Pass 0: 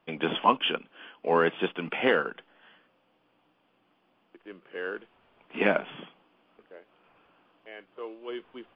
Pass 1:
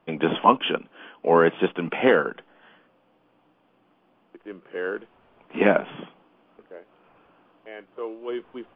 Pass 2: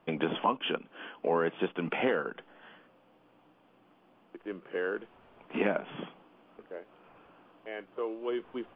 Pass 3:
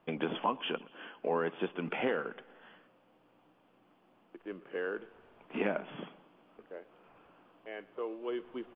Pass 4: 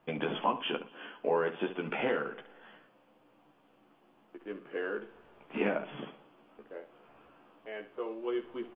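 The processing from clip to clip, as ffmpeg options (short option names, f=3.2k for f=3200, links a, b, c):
-af "highshelf=f=2k:g=-10,volume=7dB"
-af "acompressor=threshold=-30dB:ratio=2.5"
-af "aecho=1:1:119|238|357|476:0.0794|0.0445|0.0249|0.0139,volume=-3.5dB"
-af "aecho=1:1:14|71:0.668|0.266"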